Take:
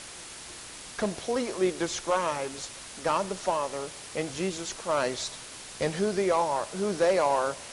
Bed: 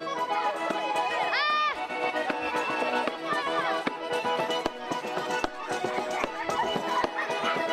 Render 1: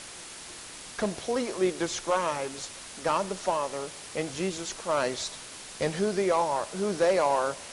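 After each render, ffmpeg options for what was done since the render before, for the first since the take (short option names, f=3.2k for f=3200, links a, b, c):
-af "bandreject=f=60:t=h:w=4,bandreject=f=120:t=h:w=4"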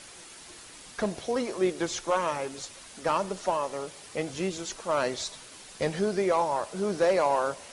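-af "afftdn=nr=6:nf=-44"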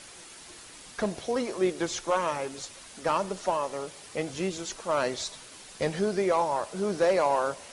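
-af anull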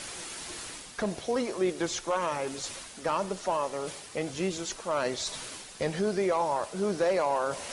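-af "alimiter=limit=-19dB:level=0:latency=1:release=25,areverse,acompressor=mode=upward:threshold=-31dB:ratio=2.5,areverse"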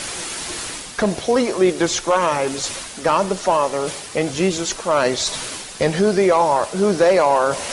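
-af "volume=12dB"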